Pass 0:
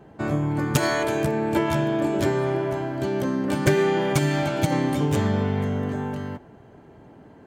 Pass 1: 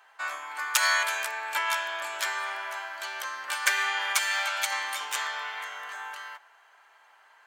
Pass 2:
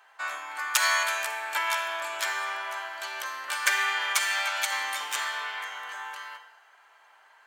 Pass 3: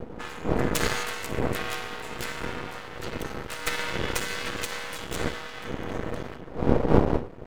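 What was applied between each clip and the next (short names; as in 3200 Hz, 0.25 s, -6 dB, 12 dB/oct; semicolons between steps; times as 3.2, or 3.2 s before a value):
HPF 1100 Hz 24 dB/oct; gain +4.5 dB
reverb RT60 0.90 s, pre-delay 37 ms, DRR 10 dB
wind noise 270 Hz -25 dBFS; ring modulator 240 Hz; half-wave rectifier; gain +2 dB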